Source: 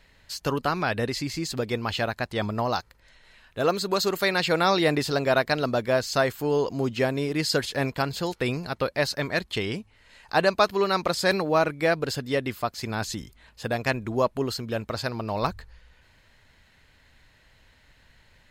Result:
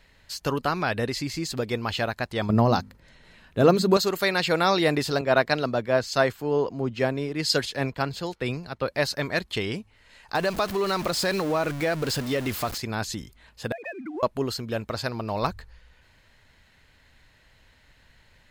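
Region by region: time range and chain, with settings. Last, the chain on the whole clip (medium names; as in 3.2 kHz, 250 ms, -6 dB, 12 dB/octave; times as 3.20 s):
2.49–3.97 s: peaking EQ 170 Hz +12.5 dB 2.8 oct + hum notches 50/100/150/200/250 Hz
5.21–8.88 s: treble shelf 8.4 kHz -8.5 dB + three bands expanded up and down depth 70%
10.35–12.78 s: jump at every zero crossing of -29.5 dBFS + compression 2.5:1, threshold -22 dBFS
13.72–14.23 s: formants replaced by sine waves + compression 5:1, threshold -36 dBFS + waveshaping leveller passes 1
whole clip: none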